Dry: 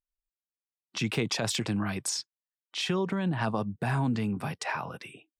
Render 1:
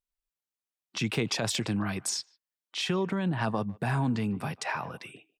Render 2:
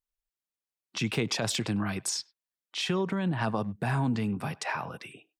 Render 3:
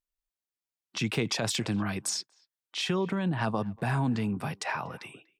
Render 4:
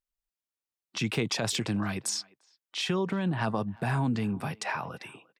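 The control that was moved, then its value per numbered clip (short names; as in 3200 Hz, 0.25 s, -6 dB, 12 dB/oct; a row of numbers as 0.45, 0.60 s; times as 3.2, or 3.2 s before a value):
speakerphone echo, time: 0.15, 0.1, 0.24, 0.35 s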